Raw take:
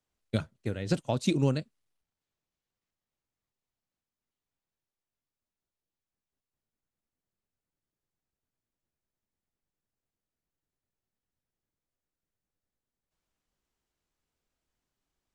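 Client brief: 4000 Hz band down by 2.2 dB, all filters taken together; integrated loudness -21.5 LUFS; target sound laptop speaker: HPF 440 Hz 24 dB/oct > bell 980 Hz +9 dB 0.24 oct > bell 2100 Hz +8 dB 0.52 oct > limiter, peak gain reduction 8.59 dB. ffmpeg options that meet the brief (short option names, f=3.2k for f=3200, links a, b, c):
-af "highpass=f=440:w=0.5412,highpass=f=440:w=1.3066,equalizer=f=980:t=o:w=0.24:g=9,equalizer=f=2.1k:t=o:w=0.52:g=8,equalizer=f=4k:t=o:g=-3.5,volume=18.5dB,alimiter=limit=-7dB:level=0:latency=1"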